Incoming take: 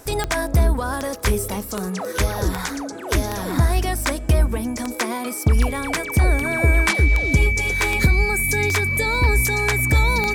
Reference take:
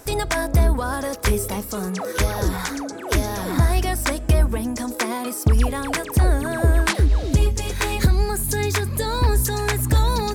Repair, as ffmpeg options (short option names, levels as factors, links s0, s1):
-af "adeclick=t=4,bandreject=f=2300:w=30"